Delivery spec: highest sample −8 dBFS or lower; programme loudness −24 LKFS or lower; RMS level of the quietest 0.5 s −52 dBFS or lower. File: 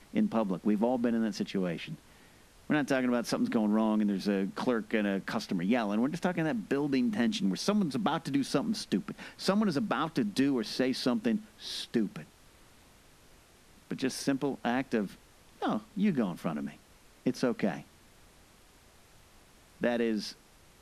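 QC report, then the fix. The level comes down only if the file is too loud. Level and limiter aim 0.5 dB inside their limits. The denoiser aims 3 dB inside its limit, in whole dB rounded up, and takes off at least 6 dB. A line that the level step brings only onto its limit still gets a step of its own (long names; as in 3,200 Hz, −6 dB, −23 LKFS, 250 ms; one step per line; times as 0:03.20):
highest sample −14.0 dBFS: in spec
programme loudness −31.0 LKFS: in spec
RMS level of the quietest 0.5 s −59 dBFS: in spec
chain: no processing needed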